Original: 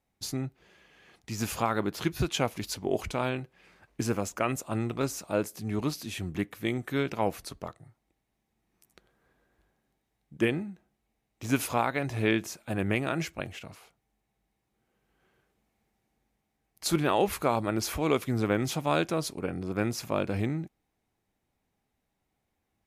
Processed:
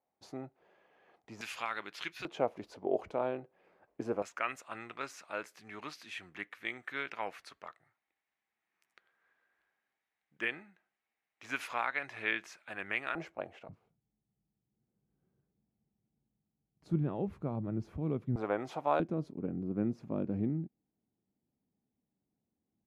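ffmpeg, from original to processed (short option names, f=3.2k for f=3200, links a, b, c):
-af "asetnsamples=n=441:p=0,asendcmd='1.41 bandpass f 2400;2.25 bandpass f 570;4.22 bandpass f 1800;13.15 bandpass f 690;13.69 bandpass f 150;18.36 bandpass f 770;19 bandpass f 220',bandpass=f=680:t=q:w=1.4:csg=0"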